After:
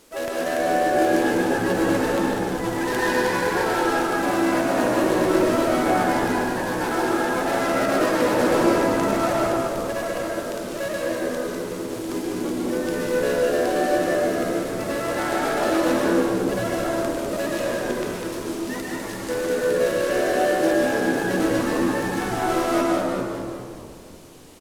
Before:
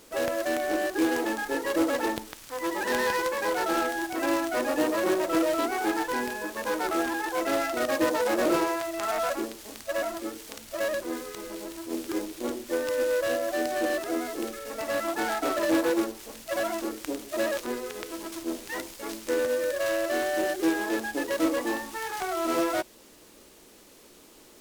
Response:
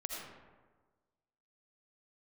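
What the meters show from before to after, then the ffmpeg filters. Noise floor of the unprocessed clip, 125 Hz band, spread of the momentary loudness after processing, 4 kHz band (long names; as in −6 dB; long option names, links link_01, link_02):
−53 dBFS, +18.5 dB, 9 LU, +4.0 dB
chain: -filter_complex "[0:a]asplit=8[link_01][link_02][link_03][link_04][link_05][link_06][link_07][link_08];[link_02]adelay=200,afreqshift=-70,volume=-5.5dB[link_09];[link_03]adelay=400,afreqshift=-140,volume=-10.7dB[link_10];[link_04]adelay=600,afreqshift=-210,volume=-15.9dB[link_11];[link_05]adelay=800,afreqshift=-280,volume=-21.1dB[link_12];[link_06]adelay=1000,afreqshift=-350,volume=-26.3dB[link_13];[link_07]adelay=1200,afreqshift=-420,volume=-31.5dB[link_14];[link_08]adelay=1400,afreqshift=-490,volume=-36.7dB[link_15];[link_01][link_09][link_10][link_11][link_12][link_13][link_14][link_15]amix=inputs=8:normalize=0[link_16];[1:a]atrim=start_sample=2205,asetrate=25137,aresample=44100[link_17];[link_16][link_17]afir=irnorm=-1:irlink=0"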